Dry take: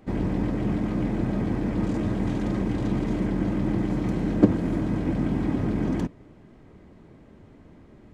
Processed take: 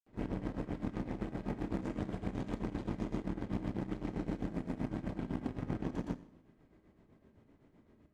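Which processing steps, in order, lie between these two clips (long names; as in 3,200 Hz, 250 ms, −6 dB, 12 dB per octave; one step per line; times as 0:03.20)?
mains-hum notches 50/100/150/200 Hz
downward compressor 6 to 1, threshold −28 dBFS, peak gain reduction 16.5 dB
granular cloud 171 ms, grains 7.8 per second, pitch spread up and down by 0 semitones
four-comb reverb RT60 0.76 s, combs from 28 ms, DRR 6.5 dB
harmonic generator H 3 −15 dB, 7 −34 dB, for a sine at −24 dBFS
level −2 dB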